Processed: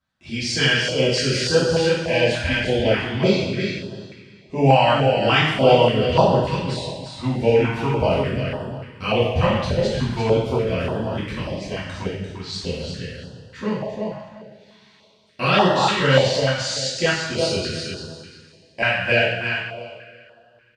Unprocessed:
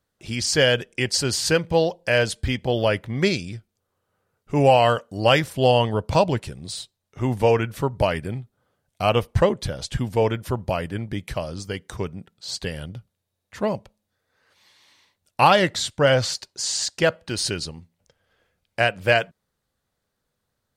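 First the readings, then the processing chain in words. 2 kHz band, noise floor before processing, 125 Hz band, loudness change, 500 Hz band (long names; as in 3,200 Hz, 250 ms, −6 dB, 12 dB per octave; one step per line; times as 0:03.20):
+3.5 dB, −79 dBFS, +3.0 dB, +2.0 dB, +2.5 dB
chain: low-pass filter 4,500 Hz 12 dB per octave
low-shelf EQ 110 Hz −7 dB
on a send: repeating echo 345 ms, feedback 22%, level −6 dB
on the sum: coupled-rooms reverb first 0.9 s, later 3.4 s, from −22 dB, DRR −9 dB
notch on a step sequencer 3.4 Hz 430–2,200 Hz
level −5 dB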